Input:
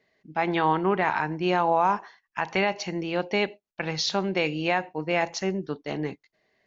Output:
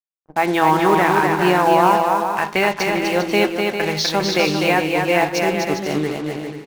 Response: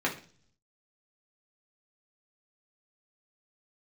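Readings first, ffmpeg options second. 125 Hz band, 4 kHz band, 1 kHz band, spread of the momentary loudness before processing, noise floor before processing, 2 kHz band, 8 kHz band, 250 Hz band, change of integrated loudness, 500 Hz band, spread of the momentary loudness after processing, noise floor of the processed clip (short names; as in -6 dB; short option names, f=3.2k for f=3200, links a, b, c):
+7.5 dB, +8.5 dB, +9.0 dB, 10 LU, -79 dBFS, +9.0 dB, n/a, +9.0 dB, +9.0 dB, +9.0 dB, 7 LU, -50 dBFS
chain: -filter_complex "[0:a]acrusher=bits=5:mix=0:aa=0.5,aecho=1:1:250|400|490|544|576.4:0.631|0.398|0.251|0.158|0.1,asplit=2[a][b];[1:a]atrim=start_sample=2205[c];[b][c]afir=irnorm=-1:irlink=0,volume=-18dB[d];[a][d]amix=inputs=2:normalize=0,volume=5dB"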